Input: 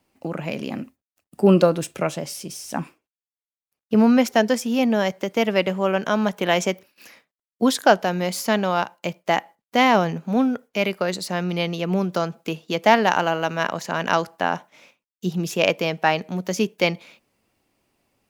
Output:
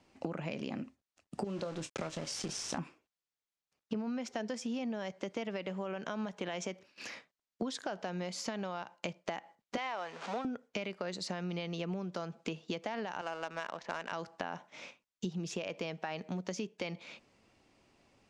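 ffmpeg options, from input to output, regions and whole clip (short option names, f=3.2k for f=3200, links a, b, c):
-filter_complex "[0:a]asettb=1/sr,asplit=3[a][b][c];[a]atrim=end=1.444[d];[b]atrim=start=1.44:end=2.78,asetpts=PTS-STARTPTS,afade=t=in:d=0.004:c=qsin,afade=t=out:st=1.336:d=0.004:c=qsin,acompressor=threshold=-29dB:ratio=2.5:attack=3.2:release=140:knee=1:detection=peak,aeval=exprs='val(0)*gte(abs(val(0)),0.015)':c=same,asplit=2[e][f];[f]adelay=25,volume=-11dB[g];[e][g]amix=inputs=2:normalize=0,atrim=end_sample=59094[h];[c]atrim=start=2.776[i];[d][h]acrossfade=d=0.004:c1=hsin:c2=qsin[j];[j][i]acrossfade=d=0.004:c1=qsin:c2=hsin,asettb=1/sr,asplit=3[k][l][m];[k]atrim=end=9.774[n];[l]atrim=start=9.77:end=10.45,asetpts=PTS-STARTPTS,afade=t=in:d=0.004:c=qsin,afade=t=out:st=0.676:d=0.004:c=qsin,aeval=exprs='val(0)+0.5*0.0316*sgn(val(0))':c=same,highpass=690,highshelf=f=7.7k:g=-11.5[o];[m]atrim=start=10.446[p];[n][o]acrossfade=d=0.004:c1=hsin:c2=qsin[q];[q][p]acrossfade=d=0.004:c1=qsin:c2=hsin,asettb=1/sr,asplit=3[r][s][t];[r]atrim=end=13.214[u];[s]atrim=start=13.21:end=14.12,asetpts=PTS-STARTPTS,afade=t=in:d=0.004:c=qsin,afade=t=out:st=0.906:d=0.004:c=qsin,highpass=f=700:p=1,highshelf=f=3.8k:g=-4,adynamicsmooth=sensitivity=6.5:basefreq=1.1k[v];[t]atrim=start=14.116[w];[u][v]acrossfade=d=0.004:c1=hsin:c2=qsin[x];[x][w]acrossfade=d=0.004:c1=qsin:c2=hsin,lowpass=f=7.4k:w=0.5412,lowpass=f=7.4k:w=1.3066,alimiter=limit=-13.5dB:level=0:latency=1:release=59,acompressor=threshold=-37dB:ratio=12,volume=2.5dB"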